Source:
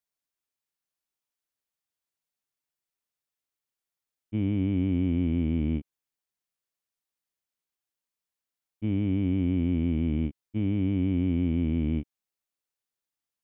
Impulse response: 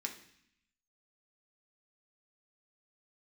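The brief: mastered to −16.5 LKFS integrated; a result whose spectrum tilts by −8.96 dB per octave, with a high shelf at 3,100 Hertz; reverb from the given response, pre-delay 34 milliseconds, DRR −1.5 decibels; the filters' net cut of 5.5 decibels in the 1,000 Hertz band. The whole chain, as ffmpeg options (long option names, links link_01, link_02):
-filter_complex "[0:a]equalizer=frequency=1000:width_type=o:gain=-7,highshelf=frequency=3100:gain=-9,asplit=2[link_01][link_02];[1:a]atrim=start_sample=2205,adelay=34[link_03];[link_02][link_03]afir=irnorm=-1:irlink=0,volume=1.5dB[link_04];[link_01][link_04]amix=inputs=2:normalize=0,volume=8dB"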